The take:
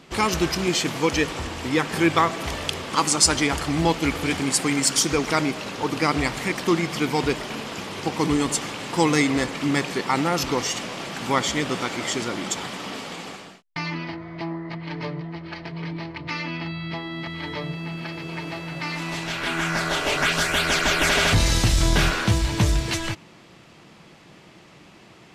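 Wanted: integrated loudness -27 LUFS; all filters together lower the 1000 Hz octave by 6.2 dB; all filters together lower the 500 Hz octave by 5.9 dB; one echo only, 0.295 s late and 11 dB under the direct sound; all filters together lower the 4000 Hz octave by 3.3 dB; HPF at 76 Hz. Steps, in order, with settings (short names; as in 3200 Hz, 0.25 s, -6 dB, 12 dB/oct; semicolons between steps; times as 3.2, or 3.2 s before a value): HPF 76 Hz; bell 500 Hz -6.5 dB; bell 1000 Hz -6 dB; bell 4000 Hz -4 dB; echo 0.295 s -11 dB; gain -1 dB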